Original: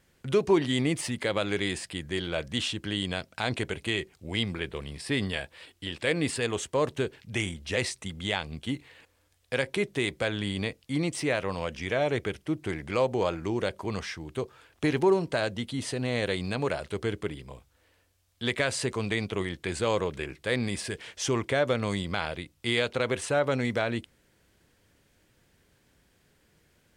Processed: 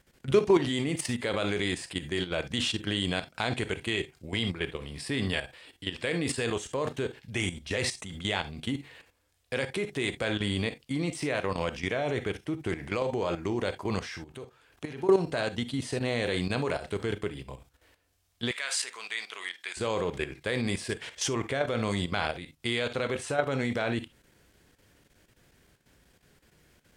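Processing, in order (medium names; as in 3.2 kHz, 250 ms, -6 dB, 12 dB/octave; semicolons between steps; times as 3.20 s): 14.17–15.09 s: compression 2:1, threshold -42 dBFS, peak gain reduction 13 dB; gated-style reverb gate 90 ms flat, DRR 9 dB; level held to a coarse grid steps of 11 dB; 18.51–19.77 s: high-pass 1.3 kHz 12 dB/octave; trim +4 dB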